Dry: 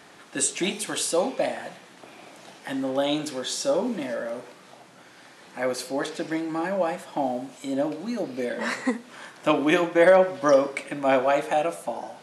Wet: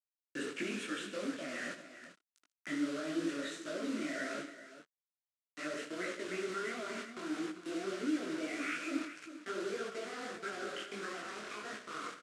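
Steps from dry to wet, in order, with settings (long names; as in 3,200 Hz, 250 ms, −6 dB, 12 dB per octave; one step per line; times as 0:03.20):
pitch glide at a constant tempo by +6 semitones starting unshifted
treble cut that deepens with the level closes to 1,200 Hz, closed at −20 dBFS
noise gate −38 dBFS, range −10 dB
reversed playback
downward compressor 16 to 1, threshold −32 dBFS, peak gain reduction 19 dB
reversed playback
brickwall limiter −32 dBFS, peak gain reduction 8.5 dB
phaser with its sweep stopped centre 2,100 Hz, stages 4
noise that follows the level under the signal 22 dB
bit-depth reduction 8 bits, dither none
loudspeaker in its box 170–8,500 Hz, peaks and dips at 290 Hz +4 dB, 840 Hz −8 dB, 1,400 Hz +9 dB
multi-tap delay 77/137/397 ms −11/−17/−12.5 dB
micro pitch shift up and down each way 56 cents
level +7 dB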